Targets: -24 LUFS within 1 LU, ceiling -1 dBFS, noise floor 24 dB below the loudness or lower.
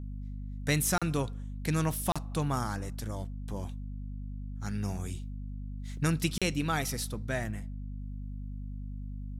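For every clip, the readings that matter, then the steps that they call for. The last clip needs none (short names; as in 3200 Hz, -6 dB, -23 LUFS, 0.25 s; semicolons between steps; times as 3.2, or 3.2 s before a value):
dropouts 3; longest dropout 36 ms; hum 50 Hz; harmonics up to 250 Hz; hum level -36 dBFS; loudness -34.0 LUFS; peak -15.0 dBFS; loudness target -24.0 LUFS
-> interpolate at 0.98/2.12/6.38, 36 ms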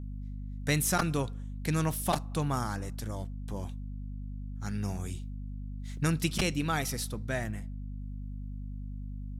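dropouts 0; hum 50 Hz; harmonics up to 250 Hz; hum level -36 dBFS
-> notches 50/100/150/200/250 Hz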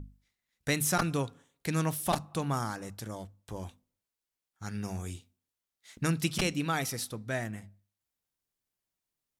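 hum none; loudness -33.0 LUFS; peak -13.5 dBFS; loudness target -24.0 LUFS
-> gain +9 dB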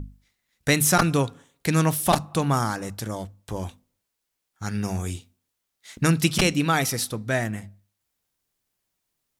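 loudness -24.0 LUFS; peak -4.5 dBFS; noise floor -80 dBFS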